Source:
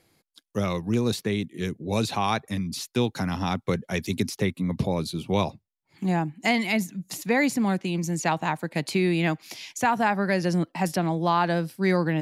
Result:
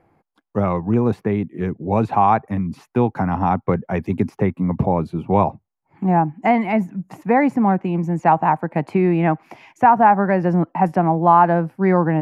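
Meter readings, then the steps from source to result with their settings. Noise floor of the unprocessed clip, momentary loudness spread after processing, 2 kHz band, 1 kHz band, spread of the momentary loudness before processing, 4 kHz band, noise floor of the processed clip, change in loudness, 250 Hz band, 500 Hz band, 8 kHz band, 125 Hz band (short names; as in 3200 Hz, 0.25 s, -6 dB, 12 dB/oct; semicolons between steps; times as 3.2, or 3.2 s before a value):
-77 dBFS, 9 LU, +0.5 dB, +11.5 dB, 7 LU, under -10 dB, -75 dBFS, +7.5 dB, +6.5 dB, +7.5 dB, under -15 dB, +6.5 dB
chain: EQ curve 560 Hz 0 dB, 810 Hz +7 dB, 2600 Hz -11 dB, 3800 Hz -26 dB; gain +6.5 dB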